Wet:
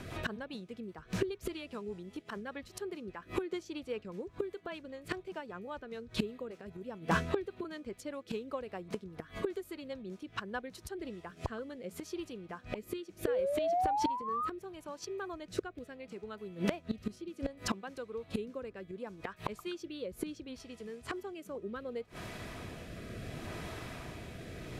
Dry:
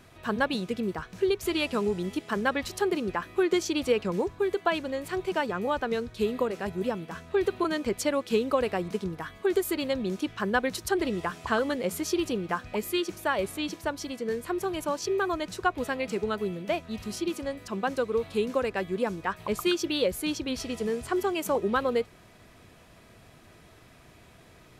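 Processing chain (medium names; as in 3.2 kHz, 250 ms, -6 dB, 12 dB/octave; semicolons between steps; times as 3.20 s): treble shelf 4.7 kHz -5 dB; inverted gate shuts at -27 dBFS, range -25 dB; painted sound rise, 13.27–14.49 s, 470–1300 Hz -42 dBFS; rotary cabinet horn 5 Hz, later 0.7 Hz, at 10.47 s; Chebyshev shaper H 3 -14 dB, 5 -20 dB, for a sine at -25.5 dBFS; trim +13.5 dB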